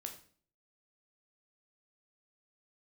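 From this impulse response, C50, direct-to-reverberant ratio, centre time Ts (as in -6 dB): 9.5 dB, 3.5 dB, 15 ms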